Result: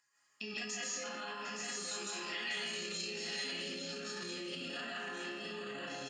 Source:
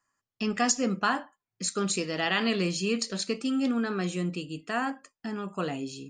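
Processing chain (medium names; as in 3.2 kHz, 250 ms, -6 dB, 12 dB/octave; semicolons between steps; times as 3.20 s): gate -42 dBFS, range -53 dB; chord resonator C#3 major, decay 0.62 s; flange 0.8 Hz, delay 7.8 ms, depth 8.6 ms, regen +34%; upward compressor, threshold -51 dBFS; multi-tap echo 750/871 ms -19.5/-4.5 dB; level held to a coarse grid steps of 10 dB; peaking EQ 8.1 kHz +2.5 dB 0.57 oct; doubling 31 ms -8 dB; algorithmic reverb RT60 1.3 s, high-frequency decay 0.5×, pre-delay 110 ms, DRR -7 dB; peak limiter -52 dBFS, peak gain reduction 20 dB; frequency weighting D; trim +15 dB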